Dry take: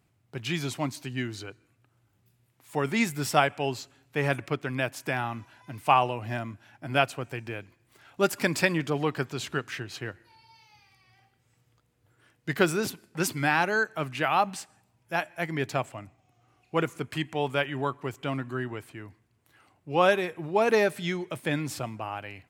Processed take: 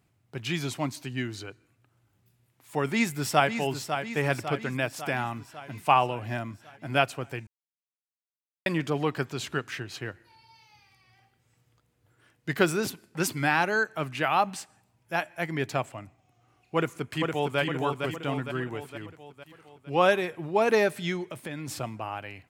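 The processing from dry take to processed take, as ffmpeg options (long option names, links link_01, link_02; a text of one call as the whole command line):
ffmpeg -i in.wav -filter_complex "[0:a]asplit=2[link_01][link_02];[link_02]afade=type=in:start_time=2.85:duration=0.01,afade=type=out:start_time=3.54:duration=0.01,aecho=0:1:550|1100|1650|2200|2750|3300|3850|4400:0.398107|0.238864|0.143319|0.0859911|0.0515947|0.0309568|0.0185741|0.0111445[link_03];[link_01][link_03]amix=inputs=2:normalize=0,asplit=2[link_04][link_05];[link_05]afade=type=in:start_time=16.75:duration=0.01,afade=type=out:start_time=17.59:duration=0.01,aecho=0:1:460|920|1380|1840|2300|2760|3220:0.630957|0.347027|0.190865|0.104976|0.0577365|0.0317551|0.0174653[link_06];[link_04][link_06]amix=inputs=2:normalize=0,asettb=1/sr,asplit=3[link_07][link_08][link_09];[link_07]atrim=end=21.264[link_10];[link_08]atrim=start=21.26:end=21.68,asetpts=PTS-STARTPTS,afade=type=in:duration=0.004:curve=qsin,afade=type=out:start_time=0.416:duration=0.004:curve=qsin,acompressor=threshold=-34dB:ratio=3:attack=3.2:release=140:knee=1:detection=peak[link_11];[link_09]atrim=start=21.676[link_12];[link_10][link_11]acrossfade=duration=0.004:curve1=hsin:curve2=qsin[link_13];[link_13][link_12]acrossfade=duration=0.004:curve1=qsin:curve2=hsin,asplit=3[link_14][link_15][link_16];[link_14]atrim=end=7.47,asetpts=PTS-STARTPTS,afade=type=out:start_time=7.466:duration=0.004:curve=hsin[link_17];[link_15]atrim=start=7.47:end=8.66,asetpts=PTS-STARTPTS,volume=0[link_18];[link_16]atrim=start=8.66,asetpts=PTS-STARTPTS,afade=type=in:duration=0.004:curve=hsin[link_19];[link_17][link_18][link_19]concat=n=3:v=0:a=1" out.wav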